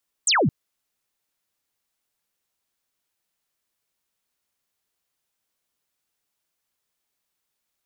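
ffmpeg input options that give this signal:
ffmpeg -f lavfi -i "aevalsrc='0.158*clip(t/0.002,0,1)*clip((0.22-t)/0.002,0,1)*sin(2*PI*8800*0.22/log(110/8800)*(exp(log(110/8800)*t/0.22)-1))':duration=0.22:sample_rate=44100" out.wav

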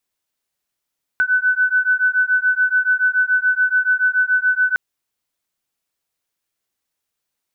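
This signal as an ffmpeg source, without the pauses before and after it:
ffmpeg -f lavfi -i "aevalsrc='0.141*(sin(2*PI*1500*t)+sin(2*PI*1507*t))':duration=3.56:sample_rate=44100" out.wav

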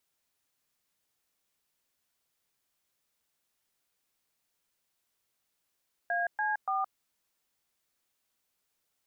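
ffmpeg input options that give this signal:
ffmpeg -f lavfi -i "aevalsrc='0.0316*clip(min(mod(t,0.288),0.169-mod(t,0.288))/0.002,0,1)*(eq(floor(t/0.288),0)*(sin(2*PI*697*mod(t,0.288))+sin(2*PI*1633*mod(t,0.288)))+eq(floor(t/0.288),1)*(sin(2*PI*852*mod(t,0.288))+sin(2*PI*1633*mod(t,0.288)))+eq(floor(t/0.288),2)*(sin(2*PI*770*mod(t,0.288))+sin(2*PI*1209*mod(t,0.288))))':duration=0.864:sample_rate=44100" out.wav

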